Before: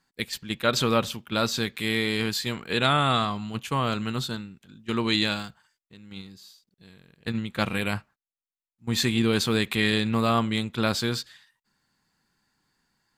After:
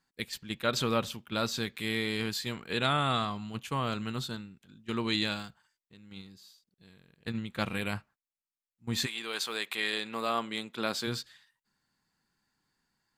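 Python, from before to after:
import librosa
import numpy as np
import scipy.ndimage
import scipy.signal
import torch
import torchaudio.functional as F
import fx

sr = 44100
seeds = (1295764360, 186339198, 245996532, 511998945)

y = fx.highpass(x, sr, hz=fx.line((9.05, 850.0), (11.06, 220.0)), slope=12, at=(9.05, 11.06), fade=0.02)
y = y * librosa.db_to_amplitude(-6.0)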